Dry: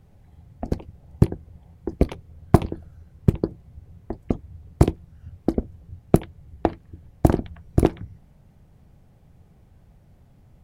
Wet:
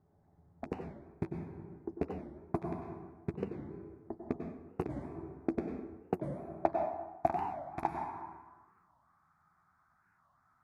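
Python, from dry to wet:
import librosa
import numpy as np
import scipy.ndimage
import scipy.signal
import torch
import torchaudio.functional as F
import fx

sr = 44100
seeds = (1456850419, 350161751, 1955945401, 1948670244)

y = fx.rattle_buzz(x, sr, strikes_db=-22.0, level_db=-9.0)
y = fx.high_shelf(y, sr, hz=3500.0, db=10.0)
y = fx.fixed_phaser(y, sr, hz=1200.0, stages=4)
y = fx.doubler(y, sr, ms=12.0, db=-11.5)
y = fx.rev_plate(y, sr, seeds[0], rt60_s=1.4, hf_ratio=0.55, predelay_ms=85, drr_db=3.0)
y = fx.rider(y, sr, range_db=4, speed_s=0.5)
y = fx.filter_sweep_bandpass(y, sr, from_hz=480.0, to_hz=1300.0, start_s=6.03, end_s=9.38, q=6.3)
y = fx.record_warp(y, sr, rpm=45.0, depth_cents=250.0)
y = y * librosa.db_to_amplitude(6.0)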